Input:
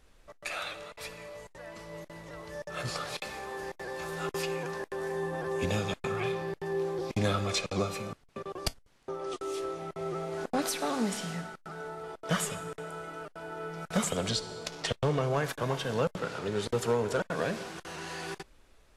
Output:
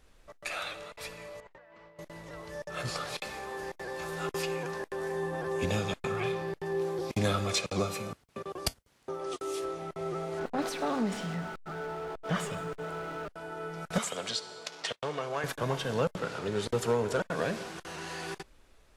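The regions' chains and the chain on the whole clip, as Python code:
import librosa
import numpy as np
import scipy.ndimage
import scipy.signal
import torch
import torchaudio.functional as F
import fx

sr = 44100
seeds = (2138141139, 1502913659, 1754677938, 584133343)

y = fx.chain(x, sr, fx.lowpass(hz=2400.0, slope=12),
    fx.low_shelf(hz=330.0, db=-9.5),
    fx.over_compress(threshold_db=-55.0, ratio=-1.0), at=(1.4, 1.99))
y = fx.chain(y, sr, fx.highpass(hz=49.0, slope=12),
    fx.high_shelf(hz=9400.0, db=7.0), at=(6.81, 9.65))
y = fx.chain(y, sr, fx.zero_step(step_db=-38.5),
    fx.lowpass(hz=2300.0, slope=6),
    fx.transformer_sat(knee_hz=240.0), at=(10.39, 13.29))
y = fx.chain(y, sr, fx.highpass(hz=770.0, slope=6),
    fx.high_shelf(hz=10000.0, db=-8.5), at=(13.98, 15.44))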